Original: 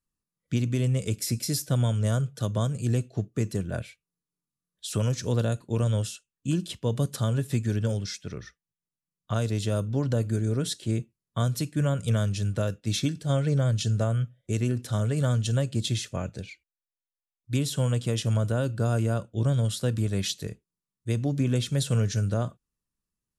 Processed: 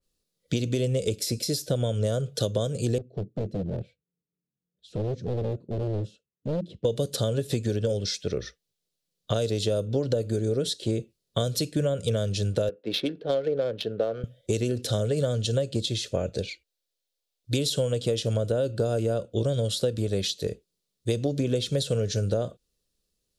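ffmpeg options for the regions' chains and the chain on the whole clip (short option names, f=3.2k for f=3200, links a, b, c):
-filter_complex "[0:a]asettb=1/sr,asplit=3[a][b][c];[a]atrim=end=2.984[d];[b]atrim=start=2.98:end=6.85,asetpts=PTS-STARTPTS,afade=t=in:d=0.004:c=qsin,afade=t=out:st=3.866:d=0.004:c=qsin,bandpass=f=160:t=q:w=1.2,volume=32dB,asoftclip=hard,volume=-32dB[e];[c]atrim=start=6.846[f];[d][e]acrossfade=d=0.004:c1=hsin:c2=qsin[g];[g][f]acrossfade=d=0.004:c1=qsin:c2=hsin,asettb=1/sr,asplit=3[h][i][j];[h]atrim=end=12.694[k];[i]atrim=start=12.69:end=14.24,asetpts=PTS-STARTPTS,afade=t=in:d=0.004:c=qsin,afade=t=out:st=1.546:d=0.004:c=qsin,highpass=350,lowpass=3.3k,equalizer=f=610:t=o:w=0.21:g=-5,adynamicsmooth=sensitivity=5.5:basefreq=1.2k[l];[j]atrim=start=14.236[m];[k][l]acrossfade=d=0.004:c1=hsin:c2=qsin[n];[n][m]acrossfade=d=0.004:c1=qsin:c2=hsin,equalizer=f=125:t=o:w=1:g=-5,equalizer=f=250:t=o:w=1:g=-4,equalizer=f=500:t=o:w=1:g=11,equalizer=f=1k:t=o:w=1:g=-10,equalizer=f=2k:t=o:w=1:g=-4,equalizer=f=4k:t=o:w=1:g=9,acompressor=threshold=-31dB:ratio=6,adynamicequalizer=threshold=0.00251:dfrequency=2300:dqfactor=0.7:tfrequency=2300:tqfactor=0.7:attack=5:release=100:ratio=0.375:range=3:mode=cutabove:tftype=highshelf,volume=8.5dB"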